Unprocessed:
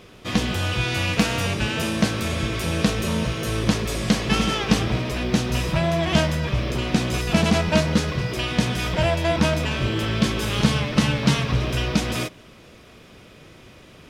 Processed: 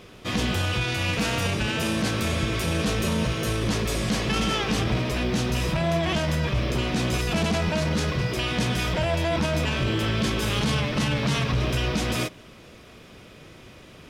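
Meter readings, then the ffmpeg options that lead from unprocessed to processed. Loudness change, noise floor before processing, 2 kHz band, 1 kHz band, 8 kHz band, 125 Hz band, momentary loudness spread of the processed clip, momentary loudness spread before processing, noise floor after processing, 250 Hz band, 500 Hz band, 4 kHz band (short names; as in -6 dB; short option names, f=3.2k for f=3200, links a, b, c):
-2.5 dB, -47 dBFS, -2.0 dB, -2.0 dB, -2.0 dB, -2.5 dB, 2 LU, 5 LU, -47 dBFS, -4.0 dB, -2.0 dB, -2.0 dB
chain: -af "alimiter=limit=-15.5dB:level=0:latency=1:release=15"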